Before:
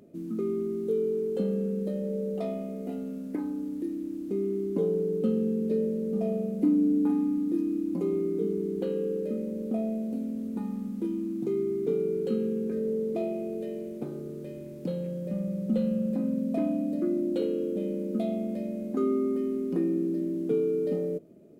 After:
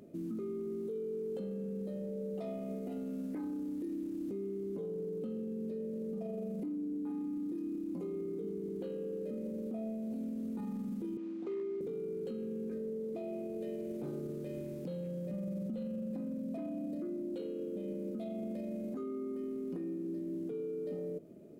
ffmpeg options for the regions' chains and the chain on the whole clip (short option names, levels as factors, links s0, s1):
-filter_complex "[0:a]asettb=1/sr,asplit=3[s0][s1][s2];[s0]atrim=end=11.174[s3];[s1]atrim=start=11.17:end=11.81,asetpts=PTS-STARTPTS,afade=t=in:d=0.004:c=qsin,afade=t=out:st=0.636:d=0.004:c=qsin,highpass=480,lowpass=3500,volume=28.2,asoftclip=hard,volume=0.0355[s4];[s2]atrim=start=11.806[s5];[s3][s4]acrossfade=d=0.004:c1=hsin:c2=qsin[s6];[s6][s5]acrossfade=d=0.004:c1=qsin:c2=hsin,acompressor=threshold=0.0282:ratio=6,alimiter=level_in=2.82:limit=0.0631:level=0:latency=1:release=19,volume=0.355"